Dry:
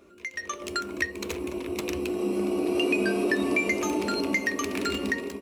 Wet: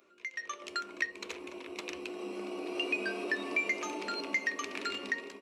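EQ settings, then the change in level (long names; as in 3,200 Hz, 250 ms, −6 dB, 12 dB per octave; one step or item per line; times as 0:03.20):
head-to-tape spacing loss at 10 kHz 27 dB
spectral tilt +4.5 dB per octave
low-shelf EQ 180 Hz −7.5 dB
−3.5 dB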